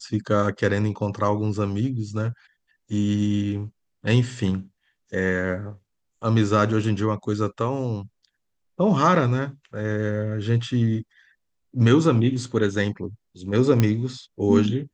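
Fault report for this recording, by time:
0:13.80: click −7 dBFS

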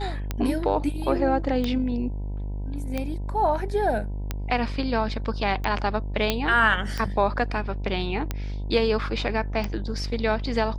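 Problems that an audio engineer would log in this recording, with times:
mains buzz 50 Hz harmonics 20 −30 dBFS
scratch tick 45 rpm −13 dBFS
0:06.30: click −7 dBFS

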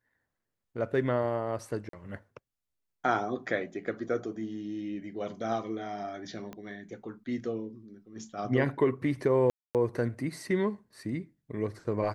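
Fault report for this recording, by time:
0:01.89–0:01.93: drop-out 43 ms
0:06.53: click −27 dBFS
0:09.50–0:09.75: drop-out 248 ms

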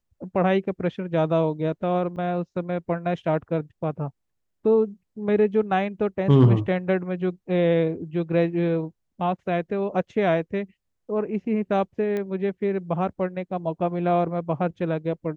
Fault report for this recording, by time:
0:02.16–0:02.17: drop-out 6.9 ms
0:12.17: click −18 dBFS

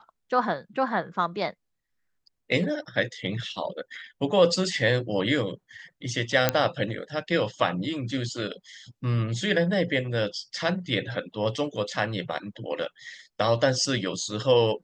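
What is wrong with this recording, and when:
0:06.49: click −4 dBFS

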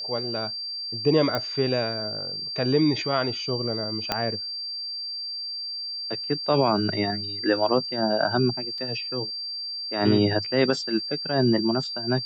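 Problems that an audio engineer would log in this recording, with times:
whistle 4,700 Hz −30 dBFS
0:01.35: click −13 dBFS
0:04.12: click −8 dBFS
0:08.78: drop-out 3.2 ms

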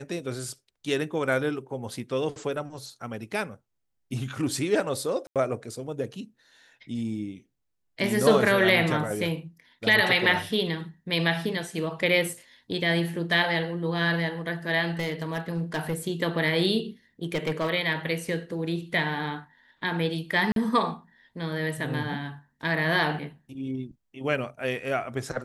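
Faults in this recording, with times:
0:05.27–0:05.36: drop-out 87 ms
0:14.99–0:15.94: clipping −22.5 dBFS
0:17.23–0:17.70: clipping −22 dBFS
0:20.52–0:20.56: drop-out 42 ms

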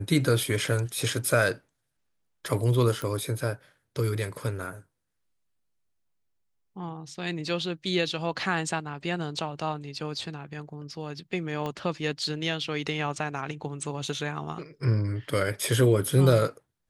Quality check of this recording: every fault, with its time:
0:03.02: click −19 dBFS
0:11.66: click −20 dBFS

